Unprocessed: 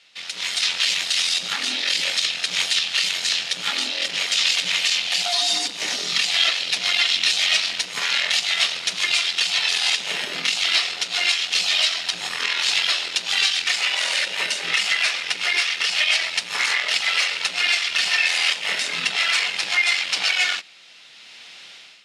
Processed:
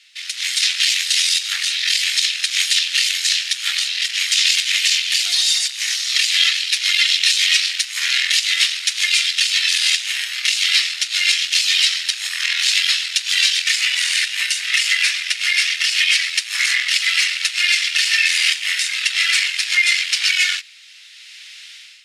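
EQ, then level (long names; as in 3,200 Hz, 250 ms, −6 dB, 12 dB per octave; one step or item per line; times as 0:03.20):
high-pass with resonance 1,800 Hz, resonance Q 2.1
high-shelf EQ 2,300 Hz +11.5 dB
high-shelf EQ 8,100 Hz +9.5 dB
−8.0 dB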